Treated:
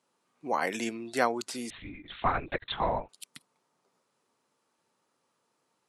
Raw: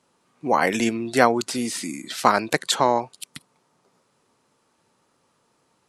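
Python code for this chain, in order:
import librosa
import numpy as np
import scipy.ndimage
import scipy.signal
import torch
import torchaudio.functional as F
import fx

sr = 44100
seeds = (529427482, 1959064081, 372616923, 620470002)

y = fx.highpass(x, sr, hz=240.0, slope=6)
y = fx.lpc_vocoder(y, sr, seeds[0], excitation='whisper', order=10, at=(1.7, 3.09))
y = y * 10.0 ** (-9.0 / 20.0)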